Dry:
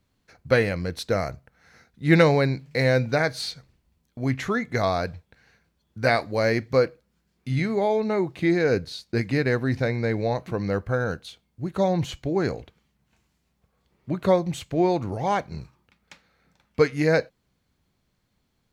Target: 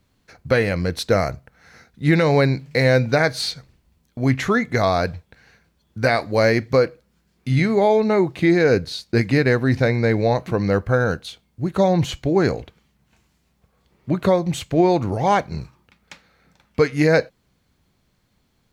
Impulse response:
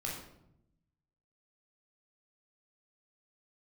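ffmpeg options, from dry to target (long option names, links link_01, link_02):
-af "alimiter=limit=-13dB:level=0:latency=1:release=209,volume=6.5dB"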